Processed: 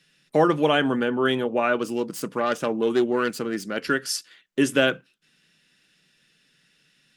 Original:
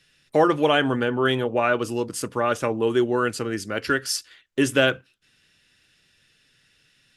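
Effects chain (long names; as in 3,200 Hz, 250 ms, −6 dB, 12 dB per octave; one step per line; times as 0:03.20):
0:01.76–0:03.77: phase distortion by the signal itself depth 0.13 ms
low shelf with overshoot 130 Hz −8 dB, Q 3
level −1.5 dB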